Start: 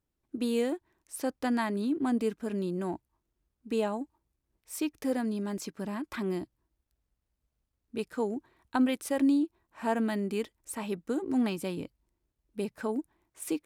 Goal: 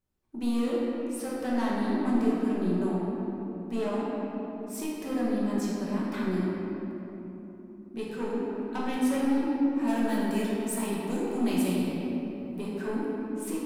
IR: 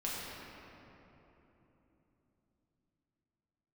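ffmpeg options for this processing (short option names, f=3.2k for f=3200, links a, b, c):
-filter_complex "[0:a]asettb=1/sr,asplit=3[a][b][c];[a]atrim=end=9.874[d];[b]atrim=start=9.87:end=12.59,asetpts=PTS-STARTPTS,afade=t=in:d=0.004:c=qsin,afade=t=out:st=2.716:d=0.004:c=qsin,highshelf=f=5.2k:g=11.5[e];[c]atrim=start=12.586[f];[d][e]acrossfade=d=0.004:c1=hsin:c2=qsin[g];[g][f]acrossfade=d=0.004:c1=qsin:c2=hsin,aeval=exprs='(tanh(22.4*val(0)+0.1)-tanh(0.1))/22.4':c=same[h];[1:a]atrim=start_sample=2205[i];[h][i]afir=irnorm=-1:irlink=0"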